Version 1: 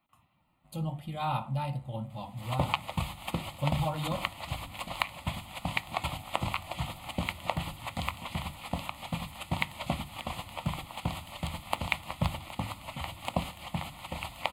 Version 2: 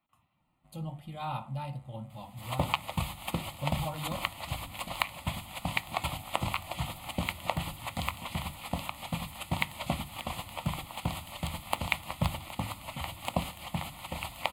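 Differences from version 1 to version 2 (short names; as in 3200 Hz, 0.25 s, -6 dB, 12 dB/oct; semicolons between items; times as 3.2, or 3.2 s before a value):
speech -4.5 dB; second sound: add high shelf 9600 Hz +7.5 dB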